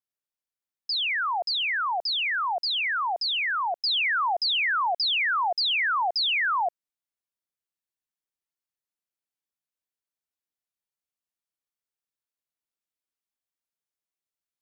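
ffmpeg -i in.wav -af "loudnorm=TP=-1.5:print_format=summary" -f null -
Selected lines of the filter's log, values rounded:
Input Integrated:    -24.1 LUFS
Input True Peak:     -21.5 dBTP
Input LRA:             3.0 LU
Input Threshold:     -34.2 LUFS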